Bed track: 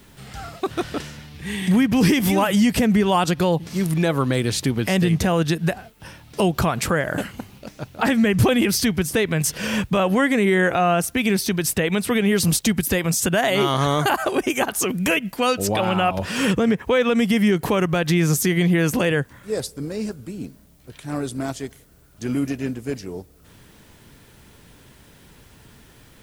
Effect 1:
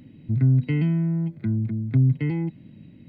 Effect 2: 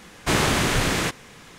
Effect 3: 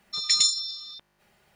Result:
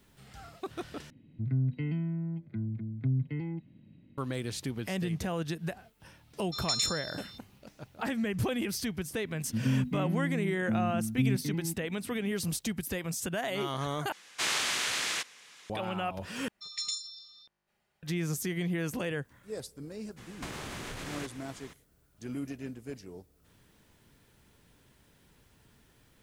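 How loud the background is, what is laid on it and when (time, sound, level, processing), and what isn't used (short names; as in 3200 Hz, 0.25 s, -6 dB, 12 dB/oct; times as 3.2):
bed track -14 dB
1.1 replace with 1 -10.5 dB
6.39 add 3 -9 dB
9.24 add 1 -13 dB + bell 240 Hz +13.5 dB 0.5 oct
14.12 replace with 2 -3.5 dB + band-pass 4900 Hz, Q 0.53
16.48 replace with 3 -14 dB
20.16 add 2 -6 dB, fades 0.02 s + compressor 16:1, threshold -30 dBFS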